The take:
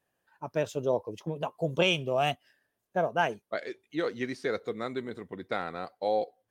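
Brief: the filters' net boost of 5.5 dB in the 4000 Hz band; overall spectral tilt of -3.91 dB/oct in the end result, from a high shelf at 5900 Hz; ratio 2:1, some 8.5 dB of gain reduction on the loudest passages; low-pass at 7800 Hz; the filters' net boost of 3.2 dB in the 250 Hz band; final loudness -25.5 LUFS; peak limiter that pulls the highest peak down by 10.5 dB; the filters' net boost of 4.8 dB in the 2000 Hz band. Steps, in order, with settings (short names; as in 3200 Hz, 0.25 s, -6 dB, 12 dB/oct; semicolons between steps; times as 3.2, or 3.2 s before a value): LPF 7800 Hz; bell 250 Hz +4.5 dB; bell 2000 Hz +4.5 dB; bell 4000 Hz +4.5 dB; high shelf 5900 Hz +4 dB; compressor 2:1, threshold -32 dBFS; gain +13 dB; limiter -13 dBFS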